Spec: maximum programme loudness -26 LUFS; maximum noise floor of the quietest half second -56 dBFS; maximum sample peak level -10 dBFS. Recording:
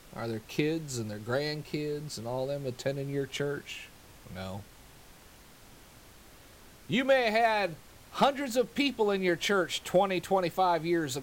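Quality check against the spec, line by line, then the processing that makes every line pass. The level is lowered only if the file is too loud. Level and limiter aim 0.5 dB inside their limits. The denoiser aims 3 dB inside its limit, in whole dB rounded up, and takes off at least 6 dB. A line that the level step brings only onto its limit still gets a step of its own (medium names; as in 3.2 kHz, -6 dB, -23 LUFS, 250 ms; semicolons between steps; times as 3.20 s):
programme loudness -30.0 LUFS: pass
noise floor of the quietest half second -54 dBFS: fail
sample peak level -14.5 dBFS: pass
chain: noise reduction 6 dB, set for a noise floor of -54 dBFS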